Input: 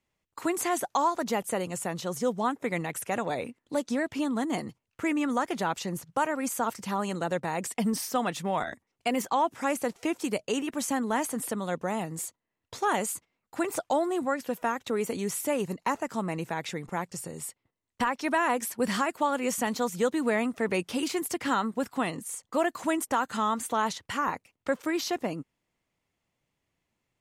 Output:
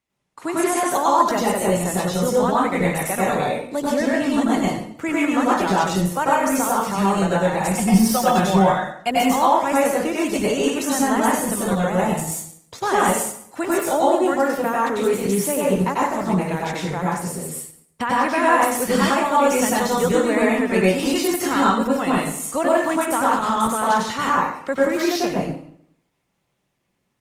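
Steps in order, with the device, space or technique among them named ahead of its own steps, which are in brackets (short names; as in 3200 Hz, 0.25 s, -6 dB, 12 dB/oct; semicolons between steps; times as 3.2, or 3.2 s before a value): 7.6–9.1 comb 5.5 ms, depth 70%; far-field microphone of a smart speaker (reverb RT60 0.65 s, pre-delay 89 ms, DRR -5.5 dB; HPF 89 Hz 6 dB/oct; AGC gain up to 3.5 dB; Opus 20 kbps 48000 Hz)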